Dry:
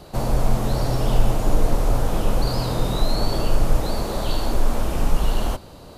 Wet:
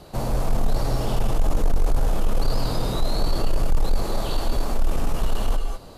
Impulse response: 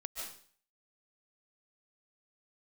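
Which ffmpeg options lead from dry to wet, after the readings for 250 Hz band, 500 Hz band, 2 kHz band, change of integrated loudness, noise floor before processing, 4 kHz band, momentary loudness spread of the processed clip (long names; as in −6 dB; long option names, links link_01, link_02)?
−4.0 dB, −3.5 dB, −3.5 dB, −2.5 dB, −42 dBFS, −3.0 dB, 3 LU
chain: -filter_complex "[1:a]atrim=start_sample=2205,afade=type=out:start_time=0.18:duration=0.01,atrim=end_sample=8379,asetrate=27342,aresample=44100[link_01];[0:a][link_01]afir=irnorm=-1:irlink=0,asoftclip=type=tanh:threshold=-11.5dB"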